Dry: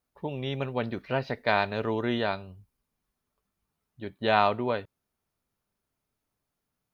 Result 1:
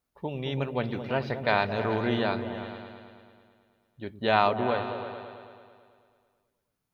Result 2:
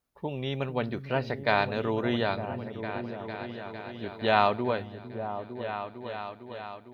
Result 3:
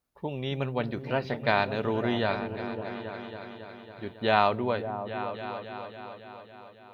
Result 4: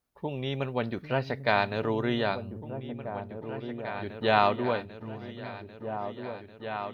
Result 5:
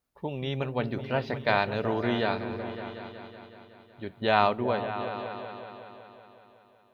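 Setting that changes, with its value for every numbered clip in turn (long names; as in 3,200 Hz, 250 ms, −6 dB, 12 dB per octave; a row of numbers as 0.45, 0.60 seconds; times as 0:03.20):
echo whose low-pass opens from repeat to repeat, delay time: 109, 454, 276, 794, 186 milliseconds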